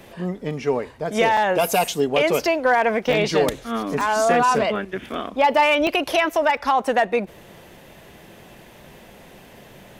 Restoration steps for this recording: clip repair -10 dBFS; interpolate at 1.37/3.13/4.01/5.87/6.57 s, 2.5 ms

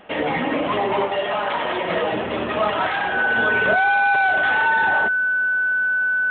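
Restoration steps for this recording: band-stop 1.5 kHz, Q 30

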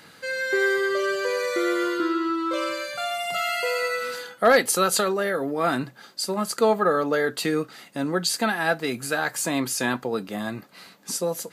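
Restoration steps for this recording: clip repair -8.5 dBFS

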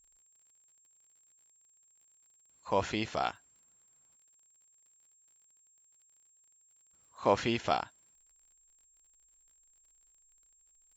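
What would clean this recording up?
de-click; band-stop 7.5 kHz, Q 30

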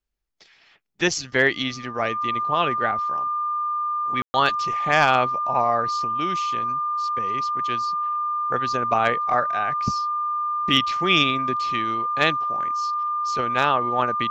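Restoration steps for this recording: band-stop 1.2 kHz, Q 30; room tone fill 4.22–4.34 s

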